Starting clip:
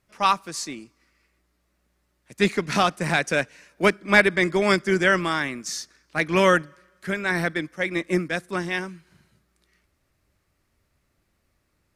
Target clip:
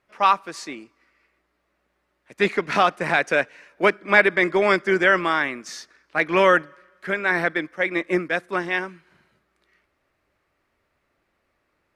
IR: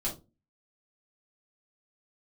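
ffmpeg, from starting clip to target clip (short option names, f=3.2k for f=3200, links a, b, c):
-filter_complex "[0:a]bass=f=250:g=-13,treble=f=4k:g=-14,asplit=2[a][b];[b]alimiter=limit=-14dB:level=0:latency=1:release=26,volume=-3dB[c];[a][c]amix=inputs=2:normalize=0"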